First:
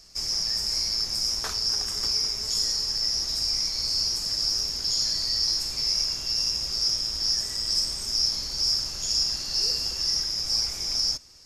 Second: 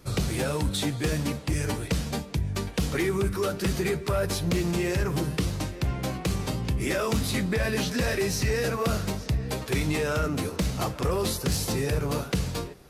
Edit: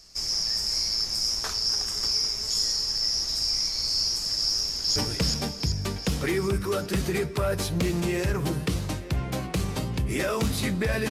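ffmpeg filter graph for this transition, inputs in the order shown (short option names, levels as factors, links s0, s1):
-filter_complex "[0:a]apad=whole_dur=11.1,atrim=end=11.1,atrim=end=4.962[s0];[1:a]atrim=start=1.668:end=7.81[s1];[s0][s1]acrossfade=d=0.004:c1=hsin:c2=hsin,asplit=2[s2][s3];[s3]afade=t=in:st=4.5:d=0.01,afade=t=out:st=4.96:d=0.01,aecho=0:1:380|760|1140|1520|1900|2280|2660|3040:0.749894|0.412442|0.226843|0.124764|0.06862|0.037741|0.0207576|0.0114167[s4];[s2][s4]amix=inputs=2:normalize=0"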